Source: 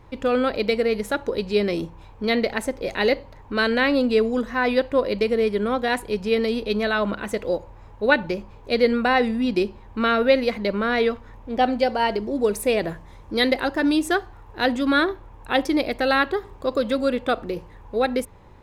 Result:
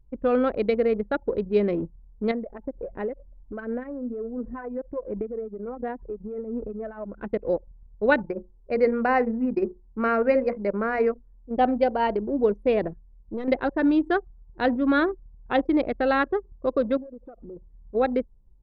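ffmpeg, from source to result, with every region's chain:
ffmpeg -i in.wav -filter_complex "[0:a]asettb=1/sr,asplit=3[link_01][link_02][link_03];[link_01]atrim=end=2.314[link_04];[link_02]atrim=start=2.31:end=7.18,asetpts=PTS-STARTPTS,afade=type=in:duration=0.004:curve=qsin,afade=type=out:start_time=4.866:duration=0.004:curve=qsin,lowpass=2400,acompressor=threshold=-29dB:ratio=4:attack=3.2:release=140:knee=1:detection=peak,aphaser=in_gain=1:out_gain=1:delay=3.6:decay=0.36:speed=1.4:type=sinusoidal[link_05];[link_03]atrim=start=7.176[link_06];[link_04][link_05]acrossfade=duration=0.004:curve1=hsin:curve2=qsin[link_07];[link_07][link_06]acrossfade=duration=0.004:curve1=qsin:curve2=hsin,asettb=1/sr,asplit=3[link_08][link_09][link_10];[link_08]atrim=end=8.254[link_11];[link_09]atrim=start=8.25:end=11.51,asetpts=PTS-STARTPTS,afade=type=in:duration=0.004:curve=qsin,afade=type=out:start_time=3.256:duration=0.004:curve=qsin,asuperstop=centerf=3500:order=4:qfactor=1.5,bass=frequency=250:gain=-4,treble=frequency=4000:gain=9,bandreject=frequency=60:width_type=h:width=6,bandreject=frequency=120:width_type=h:width=6,bandreject=frequency=180:width_type=h:width=6,bandreject=frequency=240:width_type=h:width=6,bandreject=frequency=300:width_type=h:width=6,bandreject=frequency=360:width_type=h:width=6,bandreject=frequency=420:width_type=h:width=6,bandreject=frequency=480:width_type=h:width=6,bandreject=frequency=540:width_type=h:width=6[link_12];[link_10]atrim=start=11.506[link_13];[link_11][link_12]acrossfade=duration=0.004:curve1=hsin:curve2=qsin[link_14];[link_14][link_13]acrossfade=duration=0.004:curve1=qsin:curve2=hsin,asettb=1/sr,asplit=3[link_15][link_16][link_17];[link_15]atrim=end=12.874[link_18];[link_16]atrim=start=12.87:end=13.48,asetpts=PTS-STARTPTS,afade=type=in:duration=0.004:curve=qsin,afade=type=out:start_time=0.606:duration=0.004:curve=qsin,acompressor=threshold=-22dB:ratio=3:attack=3.2:release=140:knee=1:detection=peak,aeval=exprs='(tanh(14.1*val(0)+0.5)-tanh(0.5))/14.1':channel_layout=same[link_19];[link_17]atrim=start=13.476[link_20];[link_18][link_19]acrossfade=duration=0.004:curve1=hsin:curve2=qsin[link_21];[link_21][link_20]acrossfade=duration=0.004:curve1=qsin:curve2=hsin,asettb=1/sr,asplit=3[link_22][link_23][link_24];[link_22]atrim=end=16.974[link_25];[link_23]atrim=start=16.97:end=17.95,asetpts=PTS-STARTPTS,afade=type=in:duration=0.004:curve=qsin,afade=type=out:start_time=0.976:duration=0.004:curve=qsin,acompressor=threshold=-30dB:ratio=12:attack=3.2:release=140:knee=1:detection=peak,aeval=exprs='0.0355*(abs(mod(val(0)/0.0355+3,4)-2)-1)':channel_layout=same[link_26];[link_24]atrim=start=17.946[link_27];[link_25][link_26]acrossfade=duration=0.004:curve1=hsin:curve2=qsin[link_28];[link_28][link_27]acrossfade=duration=0.004:curve1=qsin:curve2=hsin,lowpass=frequency=1200:poles=1,anlmdn=100" out.wav

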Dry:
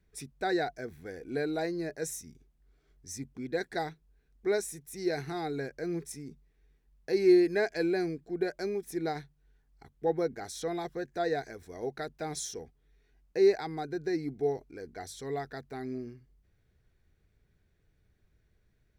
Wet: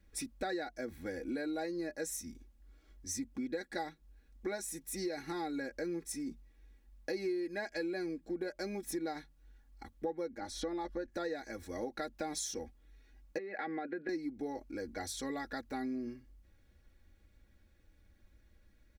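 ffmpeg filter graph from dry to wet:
ffmpeg -i in.wav -filter_complex "[0:a]asettb=1/sr,asplit=3[link_01][link_02][link_03];[link_01]atrim=end=10.384[link_04];[link_02]atrim=start=10.38:end=11.1,asetpts=PTS-STARTPTS,afade=type=in:duration=0.004:curve=qsin,afade=type=out:start_time=0.716:duration=0.004:curve=qsin,lowpass=frequency=2600:poles=1,asubboost=boost=9.5:cutoff=130,aecho=1:1:3.4:0.43,atrim=end_sample=31752[link_05];[link_03]atrim=start=11.096[link_06];[link_04][link_05]acrossfade=duration=0.004:curve1=hsin:curve2=qsin[link_07];[link_07][link_06]acrossfade=duration=0.004:curve1=qsin:curve2=hsin,asettb=1/sr,asplit=3[link_08][link_09][link_10];[link_08]atrim=end=13.384[link_11];[link_09]atrim=start=13.38:end=14.09,asetpts=PTS-STARTPTS,afade=type=in:duration=0.004:curve=qsin,afade=type=out:start_time=0.706:duration=0.004:curve=qsin,highpass=frequency=190:width=0.5412,highpass=frequency=190:width=1.3066,equalizer=frequency=200:width_type=q:width=4:gain=4,equalizer=frequency=300:width_type=q:width=4:gain=-4,equalizer=frequency=550:width_type=q:width=4:gain=7,equalizer=frequency=940:width_type=q:width=4:gain=-9,equalizer=frequency=1800:width_type=q:width=4:gain=7,equalizer=frequency=2600:width_type=q:width=4:gain=3,lowpass=frequency=2900:width=0.5412,lowpass=frequency=2900:width=1.3066,bandreject=frequency=560:width=6.2,acompressor=threshold=-34dB:ratio=6:attack=3.2:release=140:knee=1:detection=peak[link_12];[link_10]atrim=start=14.086[link_13];[link_11][link_12]acrossfade=duration=0.004:curve1=hsin:curve2=qsin[link_14];[link_14][link_13]acrossfade=duration=0.004:curve1=qsin:curve2=hsin,aecho=1:1:3.6:0.8,acompressor=threshold=-38dB:ratio=6,volume=2.5dB" out.wav

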